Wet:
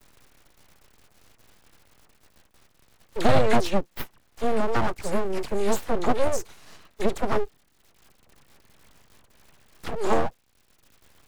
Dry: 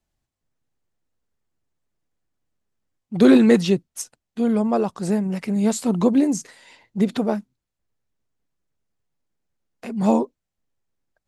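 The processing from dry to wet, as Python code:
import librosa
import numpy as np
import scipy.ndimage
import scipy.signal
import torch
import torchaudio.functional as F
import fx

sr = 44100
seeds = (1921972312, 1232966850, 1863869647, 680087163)

y = fx.highpass(x, sr, hz=97.0, slope=6)
y = fx.dmg_crackle(y, sr, seeds[0], per_s=140.0, level_db=-45.0)
y = fx.low_shelf(y, sr, hz=250.0, db=11.5, at=(7.31, 9.86))
y = fx.dispersion(y, sr, late='lows', ms=43.0, hz=1200.0)
y = np.abs(y)
y = fx.band_squash(y, sr, depth_pct=40)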